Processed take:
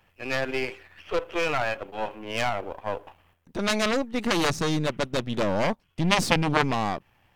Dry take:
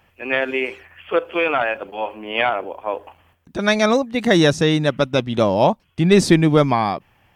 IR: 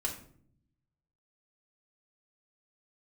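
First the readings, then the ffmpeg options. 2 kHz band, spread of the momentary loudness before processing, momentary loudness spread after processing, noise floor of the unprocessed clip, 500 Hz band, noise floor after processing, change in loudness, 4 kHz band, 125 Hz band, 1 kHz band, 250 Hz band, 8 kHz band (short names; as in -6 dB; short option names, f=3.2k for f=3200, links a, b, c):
-6.0 dB, 13 LU, 11 LU, -61 dBFS, -9.5 dB, -67 dBFS, -8.0 dB, -4.5 dB, -9.0 dB, -6.0 dB, -9.5 dB, -3.0 dB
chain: -af "aeval=exprs='if(lt(val(0),0),0.447*val(0),val(0))':c=same,aeval=exprs='0.891*(cos(1*acos(clip(val(0)/0.891,-1,1)))-cos(1*PI/2))+0.316*(cos(3*acos(clip(val(0)/0.891,-1,1)))-cos(3*PI/2))+0.141*(cos(4*acos(clip(val(0)/0.891,-1,1)))-cos(4*PI/2))+0.0794*(cos(7*acos(clip(val(0)/0.891,-1,1)))-cos(7*PI/2))':c=same"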